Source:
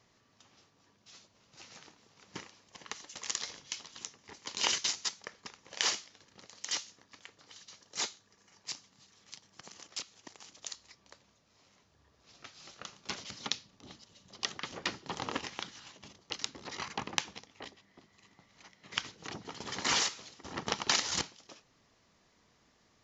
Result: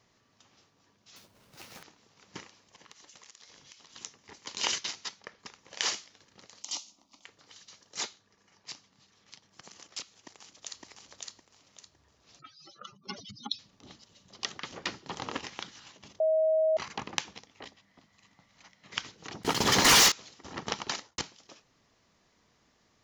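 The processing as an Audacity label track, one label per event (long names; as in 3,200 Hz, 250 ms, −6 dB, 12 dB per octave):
1.160000	1.830000	each half-wave held at its own peak
2.620000	3.920000	downward compressor 8 to 1, threshold −50 dBFS
4.790000	5.400000	high-frequency loss of the air 100 metres
6.620000	7.250000	phaser with its sweep stopped centre 450 Hz, stages 6
8.030000	9.510000	high-frequency loss of the air 68 metres
10.180000	10.840000	delay throw 560 ms, feedback 30%, level −0.5 dB
12.390000	13.590000	expanding power law on the bin magnitudes exponent 3.9
16.200000	16.770000	beep over 634 Hz −22 dBFS
17.670000	18.870000	parametric band 380 Hz −10.5 dB 0.34 octaves
19.430000	20.120000	leveller curve on the samples passes 5
20.770000	21.180000	fade out and dull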